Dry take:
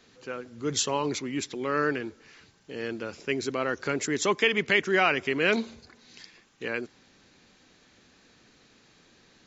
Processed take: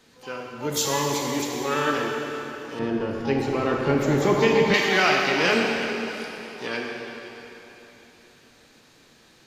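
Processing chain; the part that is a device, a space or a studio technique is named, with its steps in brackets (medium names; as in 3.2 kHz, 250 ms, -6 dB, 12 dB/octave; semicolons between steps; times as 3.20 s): shimmer-style reverb (harmony voices +12 st -8 dB; reverberation RT60 3.5 s, pre-delay 5 ms, DRR -1.5 dB); 2.79–4.74 s: tilt EQ -3.5 dB/octave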